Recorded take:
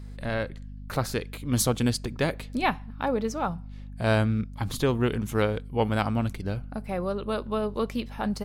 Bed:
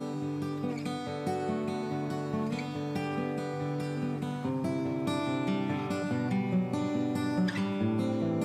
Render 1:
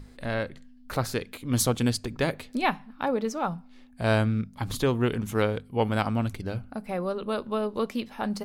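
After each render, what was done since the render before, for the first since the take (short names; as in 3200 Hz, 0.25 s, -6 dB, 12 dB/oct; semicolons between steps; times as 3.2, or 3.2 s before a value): notches 50/100/150/200 Hz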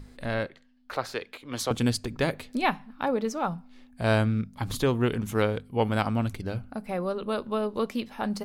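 0.46–1.71 three-band isolator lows -15 dB, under 370 Hz, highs -12 dB, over 5300 Hz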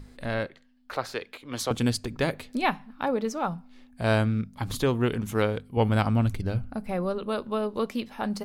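5.77–7.19 low shelf 120 Hz +10.5 dB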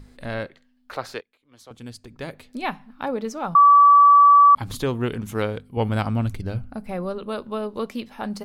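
1.21–2.89 fade in quadratic, from -23.5 dB; 3.55–4.55 bleep 1150 Hz -8.5 dBFS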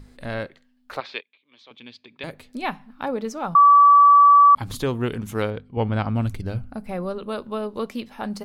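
1–2.24 speaker cabinet 310–4300 Hz, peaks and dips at 330 Hz -3 dB, 490 Hz -6 dB, 720 Hz -7 dB, 1400 Hz -7 dB, 2400 Hz +9 dB, 3500 Hz +9 dB; 5.5–6.16 air absorption 140 m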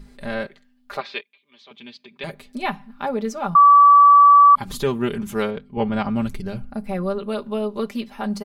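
comb 5 ms, depth 79%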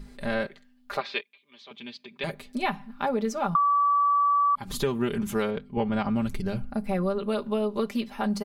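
compressor 6:1, threshold -22 dBFS, peak gain reduction 12 dB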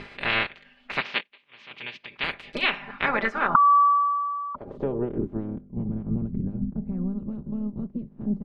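spectral limiter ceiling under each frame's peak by 26 dB; low-pass sweep 2600 Hz -> 200 Hz, 2.82–5.78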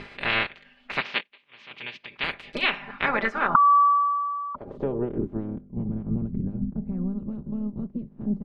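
nothing audible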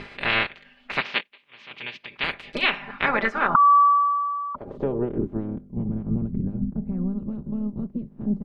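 gain +2 dB; limiter -3 dBFS, peak gain reduction 2.5 dB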